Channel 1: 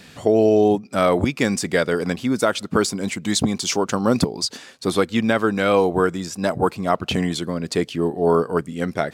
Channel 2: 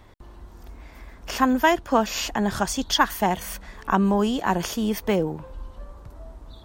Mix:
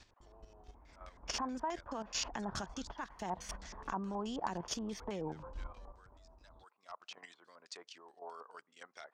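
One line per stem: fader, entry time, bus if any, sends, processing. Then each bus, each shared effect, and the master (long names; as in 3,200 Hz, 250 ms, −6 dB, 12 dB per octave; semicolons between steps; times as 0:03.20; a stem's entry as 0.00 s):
−16.0 dB, 0.00 s, no send, high-pass filter 1,100 Hz 12 dB per octave; wave folding −14 dBFS; automatic ducking −14 dB, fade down 0.30 s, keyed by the second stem
0:01.00 −11.5 dB → 0:01.59 −4.5 dB → 0:05.62 −4.5 dB → 0:06.12 −14.5 dB, 0.00 s, no send, downward compressor 8 to 1, threshold −28 dBFS, peak gain reduction 15 dB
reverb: not used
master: output level in coarse steps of 10 dB; auto-filter low-pass square 4.7 Hz 980–6,000 Hz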